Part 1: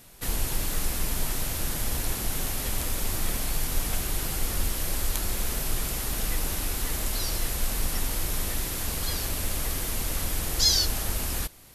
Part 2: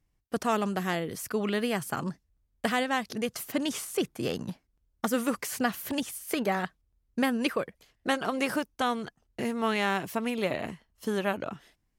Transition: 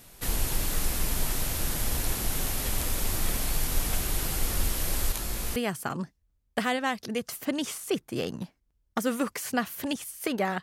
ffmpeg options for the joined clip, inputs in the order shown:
ffmpeg -i cue0.wav -i cue1.wav -filter_complex "[0:a]asettb=1/sr,asplit=3[link_01][link_02][link_03];[link_01]atrim=end=5.124[link_04];[link_02]atrim=start=5.12:end=5.56,asetpts=PTS-STARTPTS,afade=type=in:duration=0.004:curve=qsin,afade=type=out:start_time=0.436:duration=0.004:curve=qsin,flanger=delay=18:depth=3:speed=0.28[link_05];[link_03]atrim=start=5.556[link_06];[link_04][link_05]acrossfade=duration=0.004:curve1=hsin:curve2=qsin[link_07];[link_07][link_06]acrossfade=duration=0.004:curve1=qsin:curve2=hsin,apad=whole_dur=10.62,atrim=end=10.62,atrim=end=5.562[link_08];[1:a]atrim=start=1.628:end=6.69[link_09];[link_08][link_09]acrossfade=duration=0.004:curve1=hsin:curve2=hsin" out.wav

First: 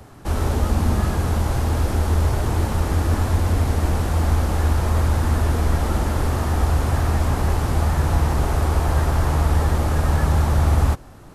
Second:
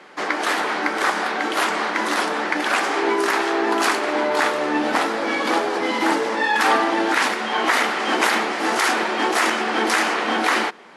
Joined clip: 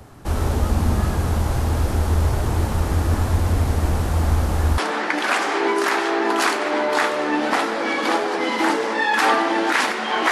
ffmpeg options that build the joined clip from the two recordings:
ffmpeg -i cue0.wav -i cue1.wav -filter_complex "[0:a]apad=whole_dur=10.31,atrim=end=10.31,atrim=end=4.782[link_01];[1:a]atrim=start=2.198:end=7.73[link_02];[link_01][link_02]acrossfade=duration=0.004:curve1=hsin:curve2=hsin" out.wav

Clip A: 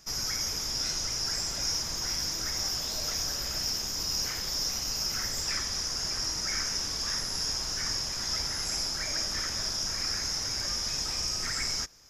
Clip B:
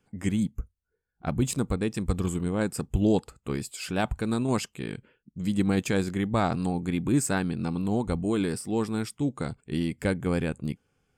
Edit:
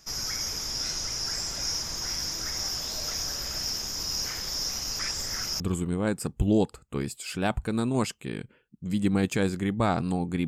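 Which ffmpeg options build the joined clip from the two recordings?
ffmpeg -i cue0.wav -i cue1.wav -filter_complex "[0:a]apad=whole_dur=10.47,atrim=end=10.47,asplit=2[link_01][link_02];[link_01]atrim=end=4.992[link_03];[link_02]atrim=start=4.988:end=5.602,asetpts=PTS-STARTPTS,areverse[link_04];[1:a]atrim=start=2.138:end=7.01[link_05];[link_03][link_04]acrossfade=duration=0.004:curve1=hsin:curve2=hsin[link_06];[link_06][link_05]acrossfade=duration=0.004:curve1=hsin:curve2=hsin" out.wav

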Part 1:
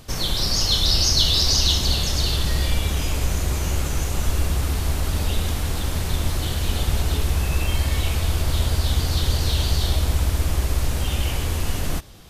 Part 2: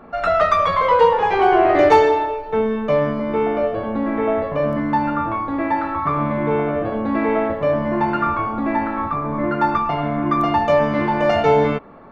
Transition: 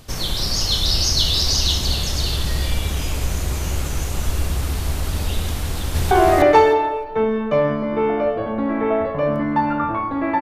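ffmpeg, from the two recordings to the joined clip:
ffmpeg -i cue0.wav -i cue1.wav -filter_complex "[0:a]apad=whole_dur=10.41,atrim=end=10.41,atrim=end=6.112[link_01];[1:a]atrim=start=1.478:end=5.78[link_02];[link_01][link_02]acrossfade=duration=0.004:curve1=hsin:curve2=hsin,asplit=2[link_03][link_04];[link_04]afade=type=in:start_time=5.63:duration=0.01,afade=type=out:start_time=6.11:duration=0.01,aecho=0:1:310|620|930:0.944061|0.141609|0.0212414[link_05];[link_03][link_05]amix=inputs=2:normalize=0" out.wav

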